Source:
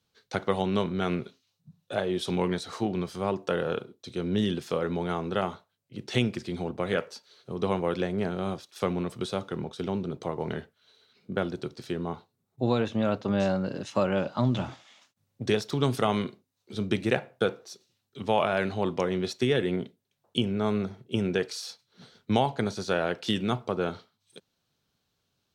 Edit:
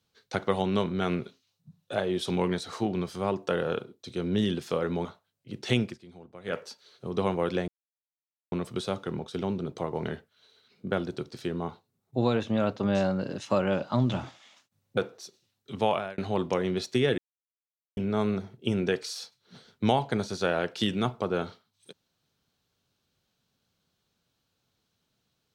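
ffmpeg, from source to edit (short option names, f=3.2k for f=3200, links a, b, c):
-filter_complex "[0:a]asplit=10[a][b][c][d][e][f][g][h][i][j];[a]atrim=end=5.052[k];[b]atrim=start=5.498:end=6.43,asetpts=PTS-STARTPTS,afade=t=out:st=0.792:d=0.14:silence=0.149624[l];[c]atrim=start=6.43:end=6.89,asetpts=PTS-STARTPTS,volume=-16.5dB[m];[d]atrim=start=6.89:end=8.13,asetpts=PTS-STARTPTS,afade=t=in:d=0.14:silence=0.149624,afade=t=out:st=1.236:d=0.004:c=hsin[n];[e]atrim=start=8.13:end=8.97,asetpts=PTS-STARTPTS,volume=0[o];[f]atrim=start=8.97:end=15.422,asetpts=PTS-STARTPTS,afade=t=in:d=0.004:c=hsin[p];[g]atrim=start=17.438:end=18.65,asetpts=PTS-STARTPTS,afade=t=out:st=0.882:d=0.33[q];[h]atrim=start=18.65:end=19.65,asetpts=PTS-STARTPTS,afade=t=in:d=0.004:c=hsin,afade=t=out:st=0.996:d=0.004:c=hsin[r];[i]atrim=start=19.65:end=20.44,asetpts=PTS-STARTPTS,volume=0[s];[j]atrim=start=20.44,asetpts=PTS-STARTPTS,afade=t=in:d=0.004:c=hsin[t];[l][m][n][o][p]concat=n=5:v=0:a=1[u];[k][u]acrossfade=d=0.004:c1=hsin:c2=hsin[v];[q][r][s][t]concat=n=4:v=0:a=1[w];[v][w]acrossfade=d=0.004:c1=hsin:c2=hsin"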